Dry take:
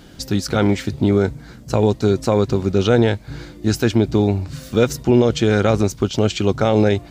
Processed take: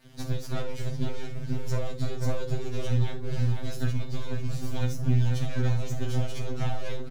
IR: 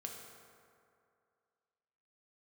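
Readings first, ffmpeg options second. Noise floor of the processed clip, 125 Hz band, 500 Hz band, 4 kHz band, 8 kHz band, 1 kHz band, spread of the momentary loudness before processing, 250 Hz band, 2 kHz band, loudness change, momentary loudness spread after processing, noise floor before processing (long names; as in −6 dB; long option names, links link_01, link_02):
−34 dBFS, −7.0 dB, −19.5 dB, −14.0 dB, −13.0 dB, −16.0 dB, 8 LU, −18.0 dB, −14.5 dB, −13.0 dB, 8 LU, −41 dBFS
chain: -filter_complex "[0:a]aeval=exprs='max(val(0),0)':channel_layout=same,equalizer=frequency=140:width=0.46:gain=10,acompressor=threshold=-14dB:ratio=2.5,asplit=2[link_01][link_02];[link_02]adelay=494,lowpass=frequency=1000:poles=1,volume=-4dB,asplit=2[link_03][link_04];[link_04]adelay=494,lowpass=frequency=1000:poles=1,volume=0.39,asplit=2[link_05][link_06];[link_06]adelay=494,lowpass=frequency=1000:poles=1,volume=0.39,asplit=2[link_07][link_08];[link_08]adelay=494,lowpass=frequency=1000:poles=1,volume=0.39,asplit=2[link_09][link_10];[link_10]adelay=494,lowpass=frequency=1000:poles=1,volume=0.39[link_11];[link_01][link_03][link_05][link_07][link_09][link_11]amix=inputs=6:normalize=0,aeval=exprs='sgn(val(0))*max(abs(val(0))-0.0168,0)':channel_layout=same,acrossover=split=88|2200[link_12][link_13][link_14];[link_12]acompressor=threshold=-31dB:ratio=4[link_15];[link_13]acompressor=threshold=-30dB:ratio=4[link_16];[link_14]acompressor=threshold=-46dB:ratio=4[link_17];[link_15][link_16][link_17]amix=inputs=3:normalize=0,equalizer=frequency=420:width=0.52:gain=-5.5[link_18];[1:a]atrim=start_sample=2205,atrim=end_sample=3528[link_19];[link_18][link_19]afir=irnorm=-1:irlink=0,afftfilt=real='re*2.45*eq(mod(b,6),0)':imag='im*2.45*eq(mod(b,6),0)':win_size=2048:overlap=0.75,volume=8.5dB"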